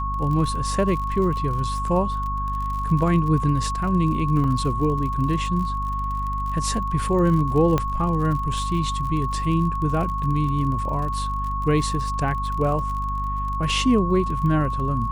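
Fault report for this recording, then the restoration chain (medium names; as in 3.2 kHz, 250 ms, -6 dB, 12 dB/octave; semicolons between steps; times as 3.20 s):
crackle 47 per s -30 dBFS
hum 50 Hz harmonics 5 -28 dBFS
whine 1.1 kHz -26 dBFS
4.44 s: dropout 3.8 ms
7.78 s: pop -9 dBFS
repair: de-click; de-hum 50 Hz, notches 5; band-stop 1.1 kHz, Q 30; interpolate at 4.44 s, 3.8 ms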